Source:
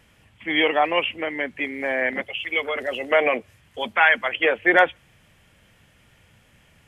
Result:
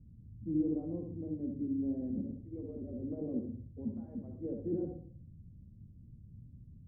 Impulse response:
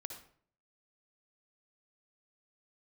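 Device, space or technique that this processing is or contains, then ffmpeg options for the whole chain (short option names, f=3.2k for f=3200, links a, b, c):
club heard from the street: -filter_complex "[0:a]alimiter=limit=-11.5dB:level=0:latency=1:release=15,lowpass=f=230:w=0.5412,lowpass=f=230:w=1.3066[a];[1:a]atrim=start_sample=2205[b];[a][b]afir=irnorm=-1:irlink=0,volume=9dB"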